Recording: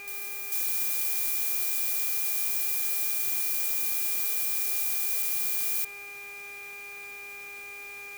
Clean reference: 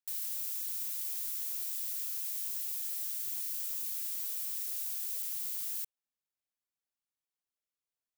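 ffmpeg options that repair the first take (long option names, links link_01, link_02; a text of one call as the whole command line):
ffmpeg -i in.wav -af "bandreject=frequency=404.1:width_type=h:width=4,bandreject=frequency=808.2:width_type=h:width=4,bandreject=frequency=1212.3:width_type=h:width=4,bandreject=frequency=1616.4:width_type=h:width=4,bandreject=frequency=2020.5:width_type=h:width=4,bandreject=frequency=2400:width=30,afwtdn=0.0028,asetnsamples=nb_out_samples=441:pad=0,asendcmd='0.52 volume volume -8.5dB',volume=0dB" out.wav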